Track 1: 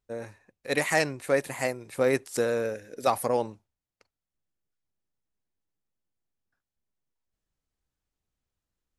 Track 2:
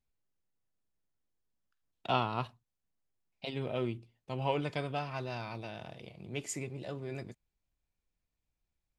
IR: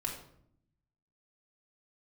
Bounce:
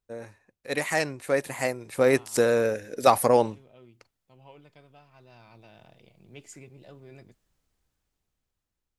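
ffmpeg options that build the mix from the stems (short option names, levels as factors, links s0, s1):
-filter_complex "[0:a]dynaudnorm=f=420:g=9:m=6.31,volume=0.75[s0];[1:a]volume=0.398,afade=t=in:st=5.11:d=0.74:silence=0.281838[s1];[s0][s1]amix=inputs=2:normalize=0"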